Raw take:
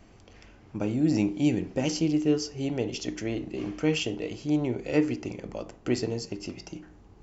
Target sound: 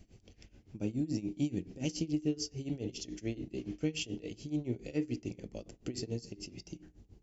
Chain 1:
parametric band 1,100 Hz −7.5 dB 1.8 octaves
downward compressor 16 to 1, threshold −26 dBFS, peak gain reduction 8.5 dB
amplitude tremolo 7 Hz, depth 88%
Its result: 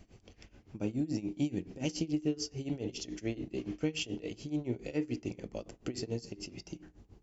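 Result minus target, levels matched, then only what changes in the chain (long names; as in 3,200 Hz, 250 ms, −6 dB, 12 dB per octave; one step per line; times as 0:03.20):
1,000 Hz band +5.0 dB
change: parametric band 1,100 Hz −17 dB 1.8 octaves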